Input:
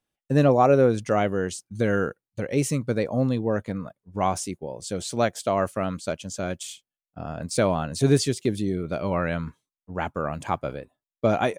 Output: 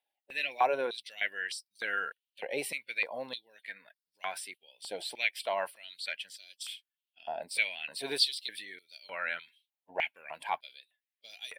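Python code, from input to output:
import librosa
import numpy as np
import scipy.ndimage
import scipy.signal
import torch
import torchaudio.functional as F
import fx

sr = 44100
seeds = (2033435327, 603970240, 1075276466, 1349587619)

y = fx.spec_quant(x, sr, step_db=15)
y = fx.fixed_phaser(y, sr, hz=2900.0, stages=4)
y = fx.filter_held_highpass(y, sr, hz=3.3, low_hz=810.0, high_hz=5100.0)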